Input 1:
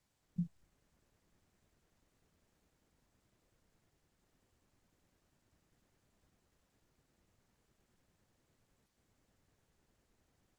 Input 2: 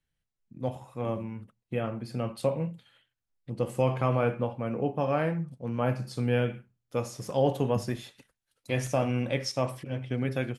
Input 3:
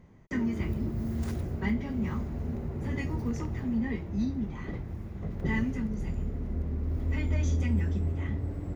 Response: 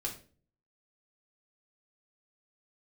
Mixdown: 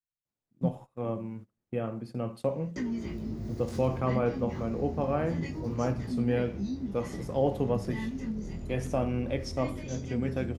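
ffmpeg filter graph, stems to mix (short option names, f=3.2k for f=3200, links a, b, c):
-filter_complex "[0:a]adelay=250,volume=1.5dB[a];[1:a]equalizer=f=1.2k:t=o:w=0.25:g=2.5,volume=-9dB,asplit=2[b][c];[c]volume=-19dB[d];[2:a]equalizer=f=5k:t=o:w=1.6:g=14,acompressor=threshold=-36dB:ratio=2.5,flanger=delay=15.5:depth=8:speed=0.24,adelay=2450,volume=-2dB[e];[3:a]atrim=start_sample=2205[f];[d][f]afir=irnorm=-1:irlink=0[g];[a][b][e][g]amix=inputs=4:normalize=0,agate=range=-19dB:threshold=-49dB:ratio=16:detection=peak,equalizer=f=300:w=0.35:g=8"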